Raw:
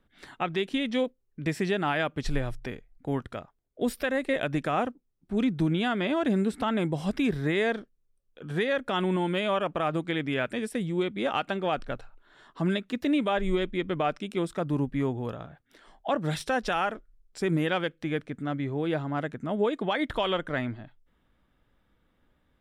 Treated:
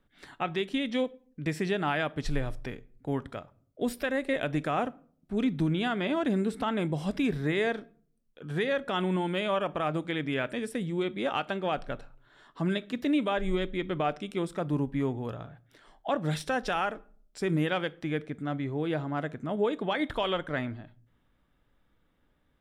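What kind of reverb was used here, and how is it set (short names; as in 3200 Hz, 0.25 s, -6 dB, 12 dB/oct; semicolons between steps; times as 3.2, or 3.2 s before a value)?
shoebox room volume 550 m³, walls furnished, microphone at 0.31 m; gain -2 dB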